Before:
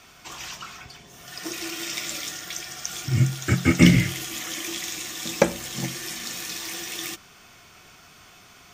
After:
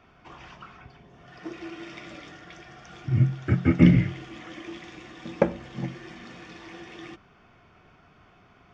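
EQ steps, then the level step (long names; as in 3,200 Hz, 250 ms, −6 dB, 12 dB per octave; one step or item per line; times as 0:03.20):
head-to-tape spacing loss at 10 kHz 43 dB
notch filter 4,000 Hz, Q 14
0.0 dB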